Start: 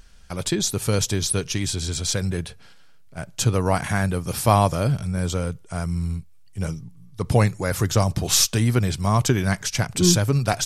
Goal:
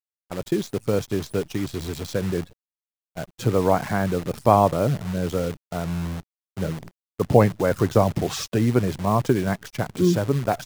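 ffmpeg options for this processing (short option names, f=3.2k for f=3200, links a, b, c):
-af "agate=range=-17dB:threshold=-41dB:ratio=16:detection=peak,afftfilt=real='re*gte(hypot(re,im),0.0282)':imag='im*gte(hypot(re,im),0.0282)':win_size=1024:overlap=0.75,dynaudnorm=f=200:g=21:m=14.5dB,bandpass=f=440:t=q:w=0.65:csg=0,acrusher=bits=7:dc=4:mix=0:aa=0.000001,volume=2.5dB"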